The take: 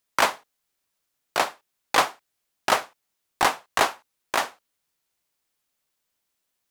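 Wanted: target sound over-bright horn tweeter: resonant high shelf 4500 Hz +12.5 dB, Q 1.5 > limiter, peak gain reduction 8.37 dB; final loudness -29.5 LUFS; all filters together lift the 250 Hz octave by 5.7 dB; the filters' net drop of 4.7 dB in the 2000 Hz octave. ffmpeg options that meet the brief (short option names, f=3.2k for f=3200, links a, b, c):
-af "equalizer=f=250:t=o:g=7.5,equalizer=f=2k:t=o:g=-4,highshelf=f=4.5k:t=q:w=1.5:g=12.5,volume=-5dB,alimiter=limit=-12dB:level=0:latency=1"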